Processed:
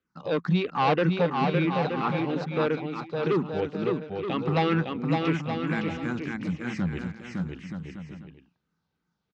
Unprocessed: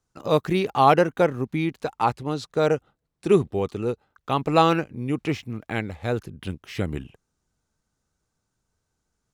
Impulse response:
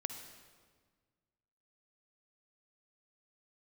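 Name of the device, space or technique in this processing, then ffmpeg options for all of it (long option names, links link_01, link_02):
barber-pole phaser into a guitar amplifier: -filter_complex "[0:a]asettb=1/sr,asplit=3[link_01][link_02][link_03];[link_01]atrim=end=5.114[link_04];[link_02]atrim=start=5.11:end=6.8,asetpts=PTS-STARTPTS,afade=type=in:duration=0.004:curve=qsin,afade=type=out:start_time=1.686:duration=0.004:curve=qsin,highshelf=frequency=5200:width_type=q:width=1.5:gain=12[link_05];[link_03]atrim=start=6.796[link_06];[link_04][link_05]acrossfade=duration=0.004:curve1=hsin:curve2=qsin[link_07];[link_07][link_06]acrossfade=duration=0.004:curve1=qsin:curve2=hsin,asplit=2[link_08][link_09];[link_09]afreqshift=-3[link_10];[link_08][link_10]amix=inputs=2:normalize=1,asoftclip=type=tanh:threshold=-18.5dB,highpass=97,equalizer=frequency=110:width_type=q:width=4:gain=-10,equalizer=frequency=170:width_type=q:width=4:gain=8,equalizer=frequency=410:width_type=q:width=4:gain=-4,equalizer=frequency=650:width_type=q:width=4:gain=-6,lowpass=frequency=4400:width=0.5412,lowpass=frequency=4400:width=1.3066,aecho=1:1:560|924|1161|1314|1414:0.631|0.398|0.251|0.158|0.1,volume=1.5dB"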